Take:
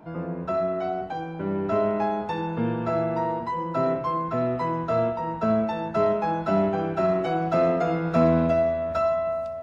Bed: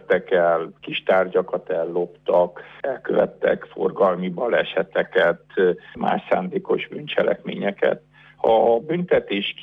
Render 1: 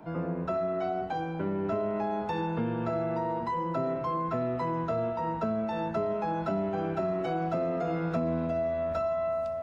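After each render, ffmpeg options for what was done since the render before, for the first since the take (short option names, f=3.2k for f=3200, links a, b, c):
-filter_complex "[0:a]acrossover=split=230|700[a][b][c];[c]alimiter=level_in=2dB:limit=-24dB:level=0:latency=1,volume=-2dB[d];[a][b][d]amix=inputs=3:normalize=0,acompressor=threshold=-27dB:ratio=5"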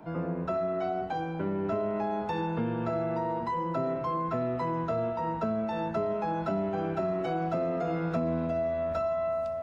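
-af anull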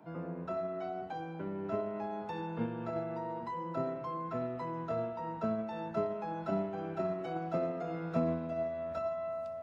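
-af "highpass=93,agate=range=-8dB:threshold=-28dB:ratio=16:detection=peak"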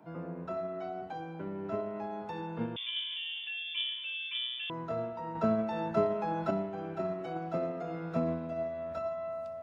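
-filter_complex "[0:a]asettb=1/sr,asplit=3[a][b][c];[a]atrim=end=2.764[d];[b]atrim=start=2.76:end=4.7,asetpts=PTS-STARTPTS,afade=t=in:d=0.004:c=qsin,afade=t=out:st=1.936:d=0.004:c=qsin,lowpass=f=3.1k:t=q:w=0.5098,lowpass=f=3.1k:t=q:w=0.6013,lowpass=f=3.1k:t=q:w=0.9,lowpass=f=3.1k:t=q:w=2.563,afreqshift=-3700[e];[c]atrim=start=4.696[f];[d][e]acrossfade=d=0.004:c1=hsin:c2=qsin[g];[g][f]acrossfade=d=0.004:c1=qsin:c2=hsin,asettb=1/sr,asplit=3[h][i][j];[h]atrim=end=5.354[k];[i]atrim=start=5.35:end=6.51,asetpts=PTS-STARTPTS,afade=t=in:d=0.004:c=qsin,afade=t=out:st=1.156:d=0.004:c=qsin,acontrast=35[l];[j]atrim=start=6.506[m];[k][l]acrossfade=d=0.004:c1=hsin:c2=qsin[n];[n][m]acrossfade=d=0.004:c1=qsin:c2=hsin"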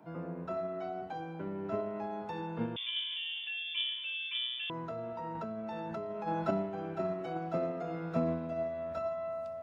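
-filter_complex "[0:a]asplit=3[a][b][c];[a]afade=t=out:st=4.7:d=0.02[d];[b]acompressor=threshold=-35dB:ratio=10:attack=3.2:release=140:knee=1:detection=peak,afade=t=in:st=4.7:d=0.02,afade=t=out:st=6.26:d=0.02[e];[c]afade=t=in:st=6.26:d=0.02[f];[d][e][f]amix=inputs=3:normalize=0"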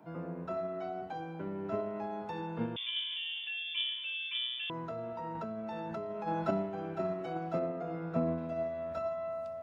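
-filter_complex "[0:a]asettb=1/sr,asplit=3[a][b][c];[a]atrim=end=7.594[d];[b]atrim=start=7.59:end=8.38,asetpts=PTS-STARTPTS,afade=t=in:d=0.004:c=qsin,afade=t=out:st=0.786:d=0.004:c=qsin,highshelf=f=3.2k:g=-11[e];[c]atrim=start=8.376[f];[d][e]acrossfade=d=0.004:c1=hsin:c2=qsin[g];[g][f]acrossfade=d=0.004:c1=qsin:c2=hsin"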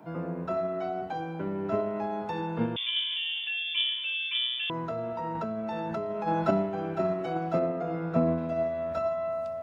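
-af "volume=6.5dB"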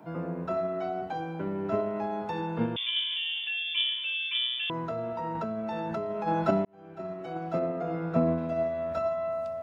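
-filter_complex "[0:a]asplit=2[a][b];[a]atrim=end=6.65,asetpts=PTS-STARTPTS,afade=t=out:st=6.646:d=0.004:c=hsin[c];[b]atrim=start=6.65,asetpts=PTS-STARTPTS,afade=t=in:d=1.22[d];[c][d]concat=n=2:v=0:a=1"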